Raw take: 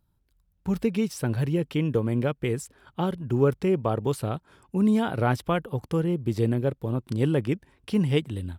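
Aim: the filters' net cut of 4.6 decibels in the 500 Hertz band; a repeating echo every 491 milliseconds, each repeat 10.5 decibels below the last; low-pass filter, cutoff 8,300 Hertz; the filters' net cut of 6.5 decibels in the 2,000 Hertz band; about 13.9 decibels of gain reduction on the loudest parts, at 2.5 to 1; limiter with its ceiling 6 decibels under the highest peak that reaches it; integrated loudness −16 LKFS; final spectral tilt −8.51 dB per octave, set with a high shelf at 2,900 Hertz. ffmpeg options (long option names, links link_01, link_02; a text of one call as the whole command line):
ffmpeg -i in.wav -af "lowpass=8300,equalizer=frequency=500:width_type=o:gain=-5.5,equalizer=frequency=2000:width_type=o:gain=-7,highshelf=frequency=2900:gain=-5,acompressor=threshold=-41dB:ratio=2.5,alimiter=level_in=8.5dB:limit=-24dB:level=0:latency=1,volume=-8.5dB,aecho=1:1:491|982|1473:0.299|0.0896|0.0269,volume=26dB" out.wav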